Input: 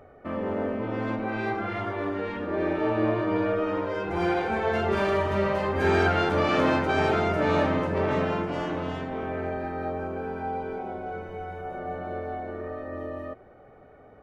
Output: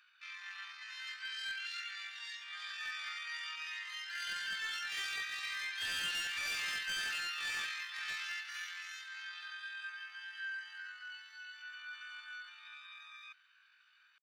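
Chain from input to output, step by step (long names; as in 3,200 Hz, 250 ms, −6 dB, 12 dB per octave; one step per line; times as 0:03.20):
pitch shifter +12 semitones
elliptic high-pass filter 1,600 Hz, stop band 80 dB
gain into a clipping stage and back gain 27 dB
level −7 dB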